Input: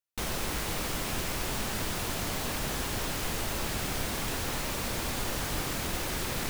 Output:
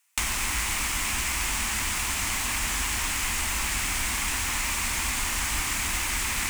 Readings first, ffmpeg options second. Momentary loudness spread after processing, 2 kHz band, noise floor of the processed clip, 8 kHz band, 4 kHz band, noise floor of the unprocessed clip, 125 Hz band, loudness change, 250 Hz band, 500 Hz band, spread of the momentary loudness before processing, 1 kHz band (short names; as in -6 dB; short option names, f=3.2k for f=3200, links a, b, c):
0 LU, +8.5 dB, -29 dBFS, +9.5 dB, +5.5 dB, -34 dBFS, -0.5 dB, +6.0 dB, -3.5 dB, -8.0 dB, 0 LU, +4.0 dB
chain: -filter_complex "[0:a]highpass=f=67:p=1,equalizer=f=170:w=0.74:g=-10.5,aexciter=amount=2.1:drive=5.6:freq=2.2k,acrossover=split=210[a][b];[b]acompressor=threshold=-45dB:ratio=4[c];[a][c]amix=inputs=2:normalize=0,equalizer=f=125:t=o:w=1:g=-11,equalizer=f=250:t=o:w=1:g=4,equalizer=f=500:t=o:w=1:g=-9,equalizer=f=1k:t=o:w=1:g=10,equalizer=f=2k:t=o:w=1:g=9,equalizer=f=8k:t=o:w=1:g=11,asplit=2[d][e];[e]adynamicsmooth=sensitivity=5.5:basefreq=4.8k,volume=1dB[f];[d][f]amix=inputs=2:normalize=0,volume=6.5dB"